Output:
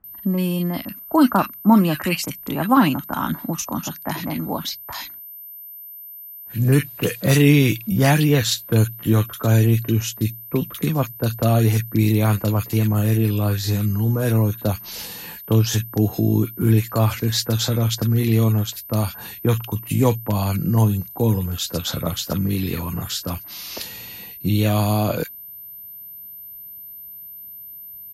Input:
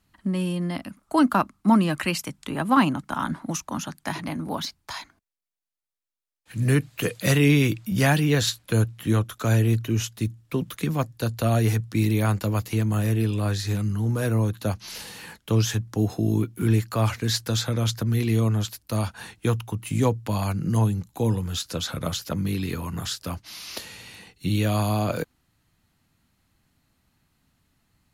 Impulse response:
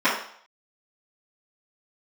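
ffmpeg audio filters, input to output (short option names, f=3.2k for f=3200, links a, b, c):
-filter_complex "[0:a]aeval=exprs='val(0)+0.01*sin(2*PI*13000*n/s)':c=same,acrossover=split=1600[a][b];[b]adelay=40[c];[a][c]amix=inputs=2:normalize=0,volume=4.5dB" -ar 48000 -c:a libvorbis -b:a 96k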